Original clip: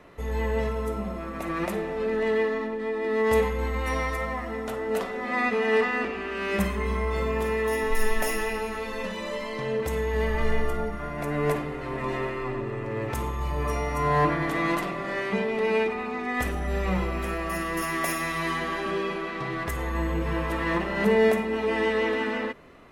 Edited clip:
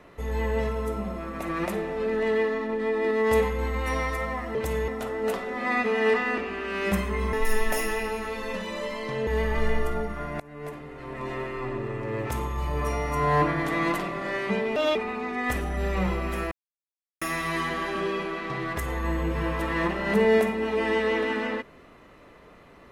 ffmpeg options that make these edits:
-filter_complex "[0:a]asplit=12[a][b][c][d][e][f][g][h][i][j][k][l];[a]atrim=end=2.692[m];[b]atrim=start=2.688:end=3.112,asetpts=PTS-STARTPTS,volume=3dB[n];[c]atrim=start=3.108:end=4.552[o];[d]atrim=start=9.768:end=10.102[p];[e]atrim=start=4.548:end=7.002[q];[f]atrim=start=7.828:end=9.772[r];[g]atrim=start=10.098:end=11.23,asetpts=PTS-STARTPTS,afade=t=out:st=1.128:d=0.004:c=hsin:silence=0.0841395[s];[h]atrim=start=11.23:end=15.594,asetpts=PTS-STARTPTS,afade=t=in:d=1.44:silence=0.0841395[t];[i]atrim=start=15.59:end=15.86,asetpts=PTS-STARTPTS,asetrate=61299,aresample=44100,atrim=end_sample=8566,asetpts=PTS-STARTPTS[u];[j]atrim=start=15.856:end=17.42,asetpts=PTS-STARTPTS,afade=t=out:st=1.56:d=0.004:c=hsin[v];[k]atrim=start=17.42:end=18.12,asetpts=PTS-STARTPTS,volume=0[w];[l]atrim=start=18.12,asetpts=PTS-STARTPTS,afade=t=in:d=0.004:c=hsin[x];[m][n]acrossfade=d=0.004:c1=hsin:c2=hsin[y];[y][o]acrossfade=d=0.004:c1=hsin:c2=hsin[z];[z][p]acrossfade=d=0.004:c1=hsin:c2=hsin[aa];[aa][q]acrossfade=d=0.004:c1=hsin:c2=hsin[ab];[ab][r]acrossfade=d=0.004:c1=hsin:c2=hsin[ac];[s][t]concat=n=2:v=0:a=1[ad];[ac][ad]acrossfade=d=0.004:c1=hsin:c2=hsin[ae];[ae][u]acrossfade=d=0.004:c1=hsin:c2=hsin[af];[v][w][x]concat=n=3:v=0:a=1[ag];[af][ag]acrossfade=d=0.004:c1=hsin:c2=hsin"

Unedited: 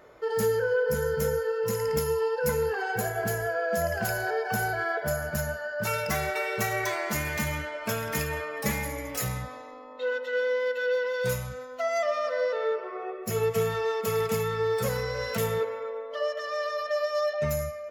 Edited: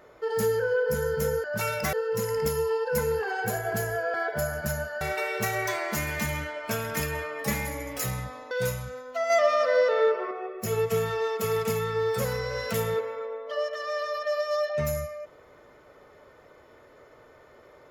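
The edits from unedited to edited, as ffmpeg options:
-filter_complex "[0:a]asplit=8[a][b][c][d][e][f][g][h];[a]atrim=end=1.442[i];[b]atrim=start=5.698:end=6.192[j];[c]atrim=start=1.438:end=3.652[k];[d]atrim=start=4.828:end=5.702[l];[e]atrim=start=6.188:end=9.692[m];[f]atrim=start=11.148:end=11.942[n];[g]atrim=start=11.938:end=12.952,asetpts=PTS-STARTPTS,volume=5.5dB[o];[h]atrim=start=12.948[p];[i][j]acrossfade=d=0.004:c1=hsin:c2=hsin[q];[q][k]acrossfade=d=0.004:c1=hsin:c2=hsin[r];[r][l]acrossfade=d=0.004:c1=hsin:c2=hsin[s];[s][m]acrossfade=d=0.004:c1=hsin:c2=hsin[t];[t][n]acrossfade=d=0.004:c1=hsin:c2=hsin[u];[u][o]acrossfade=d=0.004:c1=hsin:c2=hsin[v];[v][p]acrossfade=d=0.004:c1=hsin:c2=hsin"

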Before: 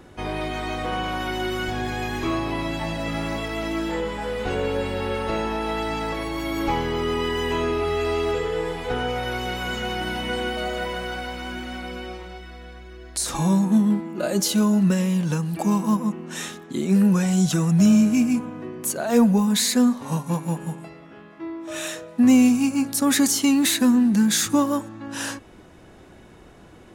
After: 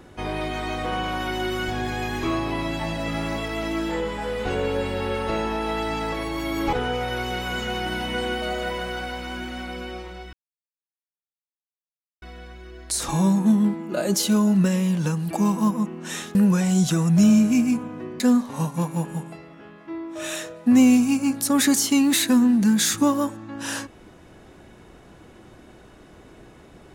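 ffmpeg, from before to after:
-filter_complex "[0:a]asplit=5[a][b][c][d][e];[a]atrim=end=6.732[f];[b]atrim=start=8.878:end=12.48,asetpts=PTS-STARTPTS,afade=t=out:st=3.598:d=0.004:c=hsin,apad=pad_dur=1.89[g];[c]atrim=start=12.48:end=16.612,asetpts=PTS-STARTPTS,afade=t=in:d=0.004:c=hsin[h];[d]atrim=start=16.968:end=18.822[i];[e]atrim=start=19.718[j];[g][h]concat=n=2:v=0:a=1[k];[f][k]acrossfade=d=0.004:c1=hsin:c2=hsin[l];[l][i]acrossfade=d=0.004:c1=hsin:c2=hsin[m];[m][j]acrossfade=d=0.004:c1=hsin:c2=hsin"

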